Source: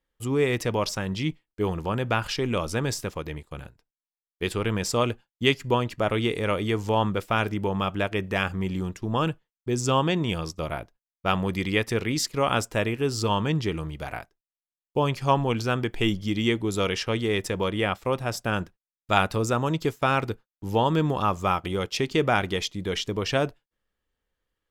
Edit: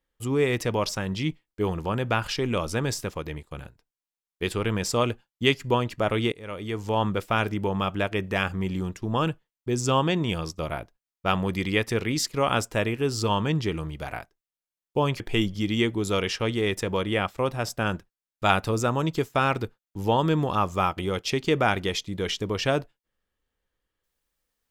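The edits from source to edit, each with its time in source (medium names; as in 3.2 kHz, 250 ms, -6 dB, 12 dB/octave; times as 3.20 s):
6.32–7.10 s: fade in, from -21.5 dB
15.20–15.87 s: delete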